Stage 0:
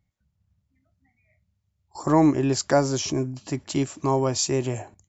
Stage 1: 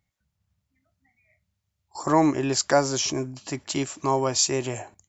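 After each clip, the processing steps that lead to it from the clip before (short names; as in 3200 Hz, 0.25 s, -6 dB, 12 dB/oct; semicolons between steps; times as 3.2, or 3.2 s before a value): low shelf 450 Hz -9.5 dB; gain +3.5 dB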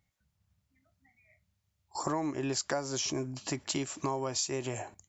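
compressor 6:1, threshold -30 dBFS, peak gain reduction 15 dB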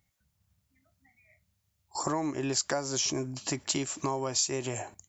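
high shelf 6700 Hz +7 dB; gain +1.5 dB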